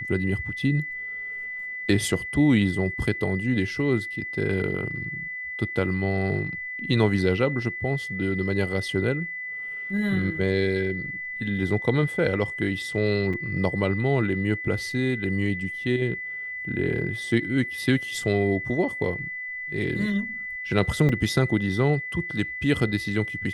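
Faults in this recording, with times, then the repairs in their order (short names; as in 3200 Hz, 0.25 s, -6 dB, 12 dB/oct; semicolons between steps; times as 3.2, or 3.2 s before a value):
tone 2000 Hz -31 dBFS
13.33–13.34 gap 5.5 ms
21.09 gap 3.8 ms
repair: notch 2000 Hz, Q 30; interpolate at 13.33, 5.5 ms; interpolate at 21.09, 3.8 ms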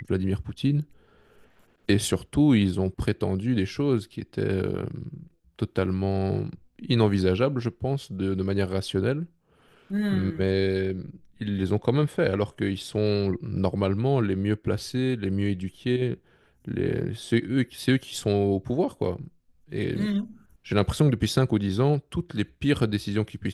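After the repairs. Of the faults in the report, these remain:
none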